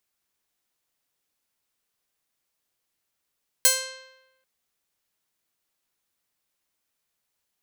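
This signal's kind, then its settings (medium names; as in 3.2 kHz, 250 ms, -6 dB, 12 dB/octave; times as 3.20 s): plucked string C5, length 0.79 s, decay 1.02 s, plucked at 0.44, bright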